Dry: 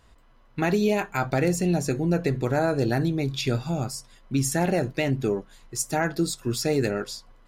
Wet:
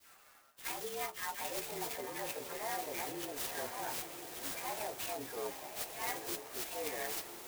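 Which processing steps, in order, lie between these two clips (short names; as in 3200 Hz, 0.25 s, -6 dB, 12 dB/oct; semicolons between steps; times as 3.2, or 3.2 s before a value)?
inharmonic rescaling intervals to 114%; HPF 510 Hz 12 dB/oct; tilt shelf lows -7 dB, about 720 Hz; reverse; compressor 6:1, threshold -43 dBFS, peak gain reduction 20 dB; reverse; dispersion lows, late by 0.109 s, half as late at 1200 Hz; on a send: diffused feedback echo 0.925 s, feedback 55%, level -7.5 dB; on the sum: clock jitter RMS 0.074 ms; gain +4.5 dB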